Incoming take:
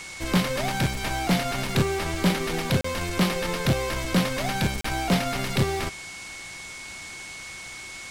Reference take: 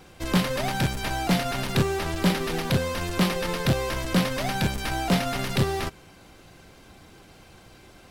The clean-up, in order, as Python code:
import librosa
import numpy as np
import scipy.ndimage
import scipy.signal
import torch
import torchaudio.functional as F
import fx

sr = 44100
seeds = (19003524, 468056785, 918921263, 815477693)

y = fx.notch(x, sr, hz=2200.0, q=30.0)
y = fx.fix_interpolate(y, sr, at_s=(2.81, 4.81), length_ms=34.0)
y = fx.noise_reduce(y, sr, print_start_s=6.4, print_end_s=6.9, reduce_db=11.0)